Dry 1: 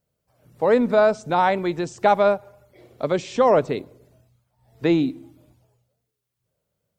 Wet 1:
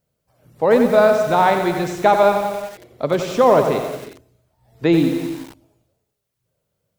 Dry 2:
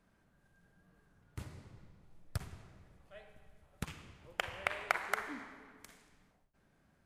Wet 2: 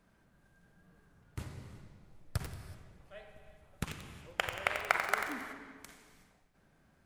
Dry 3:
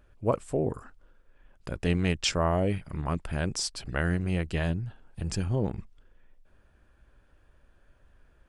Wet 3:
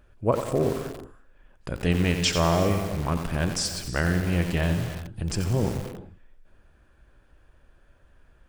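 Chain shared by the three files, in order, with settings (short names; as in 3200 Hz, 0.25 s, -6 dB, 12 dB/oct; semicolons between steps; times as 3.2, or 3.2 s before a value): non-linear reverb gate 0.4 s flat, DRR 9.5 dB; lo-fi delay 90 ms, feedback 55%, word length 6-bit, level -7 dB; gain +3 dB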